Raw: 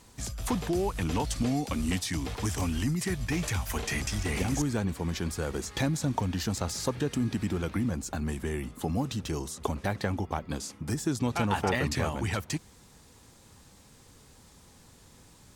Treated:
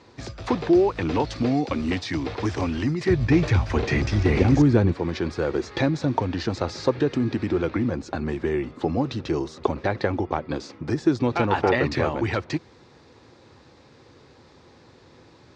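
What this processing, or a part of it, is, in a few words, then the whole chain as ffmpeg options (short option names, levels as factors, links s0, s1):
guitar cabinet: -filter_complex "[0:a]asettb=1/sr,asplit=3[s0][s1][s2];[s0]atrim=end=3.084[s3];[s1]atrim=start=3.08:end=4.92,asetpts=PTS-STARTPTS,afade=t=in:d=0.004:c=qsin,afade=t=out:st=1.836:d=0.004:c=qsin,lowshelf=f=270:g=11[s4];[s2]atrim=start=4.916[s5];[s3][s4]acrossfade=d=0.004:c1=hsin:c2=qsin[s6];[s6][s5]acrossfade=d=0.004:c1=qsin:c2=hsin,highpass=100,equalizer=f=190:t=q:w=4:g=-8,equalizer=f=350:t=q:w=4:g=7,equalizer=f=520:t=q:w=4:g=4,equalizer=f=3100:t=q:w=4:g=-6,lowpass=f=4500:w=0.5412,lowpass=f=4500:w=1.3066,volume=2"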